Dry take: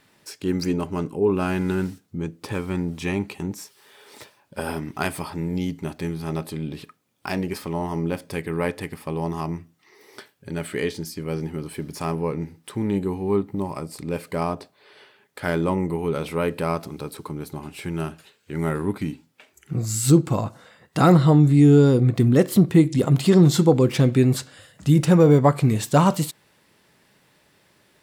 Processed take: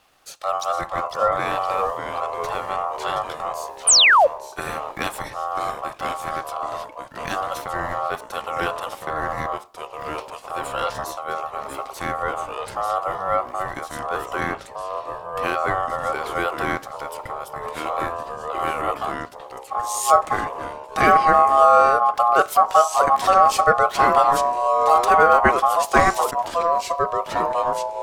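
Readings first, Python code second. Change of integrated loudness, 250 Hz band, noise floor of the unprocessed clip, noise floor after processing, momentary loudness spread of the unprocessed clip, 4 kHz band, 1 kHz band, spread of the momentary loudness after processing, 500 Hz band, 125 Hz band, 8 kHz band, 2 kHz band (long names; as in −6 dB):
+1.5 dB, −14.5 dB, −62 dBFS, −40 dBFS, 17 LU, +10.0 dB, +13.5 dB, 16 LU, +1.0 dB, −18.5 dB, +8.0 dB, +10.5 dB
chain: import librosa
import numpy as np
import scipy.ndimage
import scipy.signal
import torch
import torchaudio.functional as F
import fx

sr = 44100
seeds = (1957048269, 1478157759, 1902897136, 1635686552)

y = x * np.sin(2.0 * np.pi * 950.0 * np.arange(len(x)) / sr)
y = fx.echo_pitch(y, sr, ms=426, semitones=-2, count=3, db_per_echo=-6.0)
y = fx.spec_paint(y, sr, seeds[0], shape='fall', start_s=3.87, length_s=0.4, low_hz=500.0, high_hz=10000.0, level_db=-15.0)
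y = F.gain(torch.from_numpy(y), 2.5).numpy()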